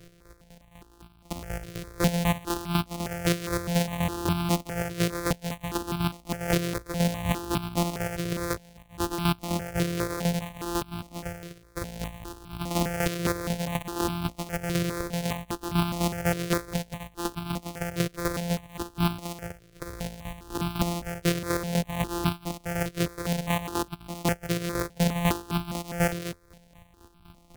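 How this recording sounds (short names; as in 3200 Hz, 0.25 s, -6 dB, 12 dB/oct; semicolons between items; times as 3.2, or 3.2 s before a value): a buzz of ramps at a fixed pitch in blocks of 256 samples; chopped level 4 Hz, depth 60%, duty 30%; notches that jump at a steady rate 4.9 Hz 240–1900 Hz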